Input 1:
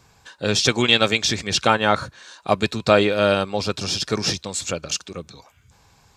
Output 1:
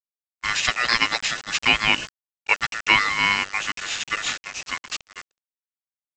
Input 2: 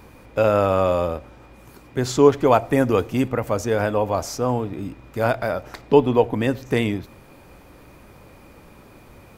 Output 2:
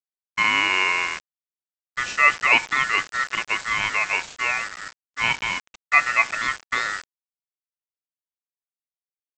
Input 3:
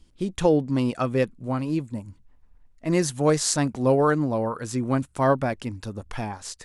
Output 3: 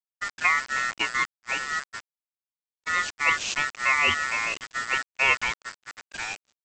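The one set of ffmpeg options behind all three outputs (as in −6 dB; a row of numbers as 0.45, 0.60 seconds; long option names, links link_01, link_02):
-af "aeval=exprs='val(0)*sin(2*PI*1600*n/s)':channel_layout=same,equalizer=frequency=2600:width=2.9:gain=11.5,aresample=16000,acrusher=bits=4:mix=0:aa=0.000001,aresample=44100,agate=range=-33dB:threshold=-26dB:ratio=3:detection=peak,volume=-3.5dB"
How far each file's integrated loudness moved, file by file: −1.5, 0.0, −0.5 LU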